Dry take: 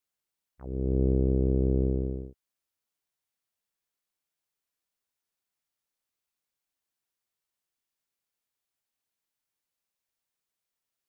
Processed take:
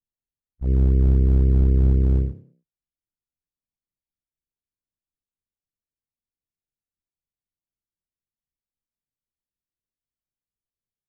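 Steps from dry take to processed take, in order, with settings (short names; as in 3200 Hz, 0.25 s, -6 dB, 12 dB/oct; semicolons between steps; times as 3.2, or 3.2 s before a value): gate with hold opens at -40 dBFS; in parallel at -3.5 dB: decimation with a swept rate 33×, swing 100% 3.9 Hz; on the sum: low shelf 450 Hz +7 dB; on a send: frequency-shifting echo 99 ms, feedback 32%, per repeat +34 Hz, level -18.5 dB; on the sum: limiter -16.5 dBFS, peak gain reduction 10.5 dB; tilt -3 dB/oct; gain -4 dB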